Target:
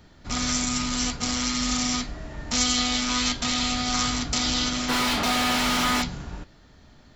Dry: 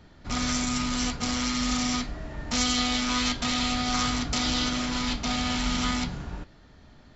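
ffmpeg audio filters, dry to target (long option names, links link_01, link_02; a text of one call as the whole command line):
ffmpeg -i in.wav -filter_complex "[0:a]asplit=3[link_01][link_02][link_03];[link_01]afade=type=out:start_time=4.88:duration=0.02[link_04];[link_02]asplit=2[link_05][link_06];[link_06]highpass=frequency=720:poles=1,volume=30dB,asoftclip=type=tanh:threshold=-14.5dB[link_07];[link_05][link_07]amix=inputs=2:normalize=0,lowpass=frequency=1700:poles=1,volume=-6dB,afade=type=in:start_time=4.88:duration=0.02,afade=type=out:start_time=6.01:duration=0.02[link_08];[link_03]afade=type=in:start_time=6.01:duration=0.02[link_09];[link_04][link_08][link_09]amix=inputs=3:normalize=0,highshelf=frequency=6000:gain=9" out.wav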